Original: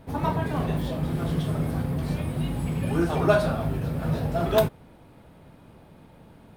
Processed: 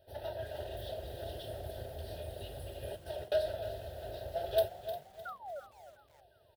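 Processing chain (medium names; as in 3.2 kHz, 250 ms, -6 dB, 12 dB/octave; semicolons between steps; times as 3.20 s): comb filter that takes the minimum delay 3.2 ms; high-pass 91 Hz 12 dB/octave; 0.66–3.32 s: compressor with a negative ratio -29 dBFS, ratio -0.5; static phaser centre 500 Hz, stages 4; 5.25–5.60 s: painted sound fall 530–1500 Hz -36 dBFS; static phaser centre 1.5 kHz, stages 8; frequency-shifting echo 352 ms, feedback 40%, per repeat +45 Hz, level -15.5 dB; bit-crushed delay 305 ms, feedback 35%, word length 8-bit, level -11.5 dB; trim -5.5 dB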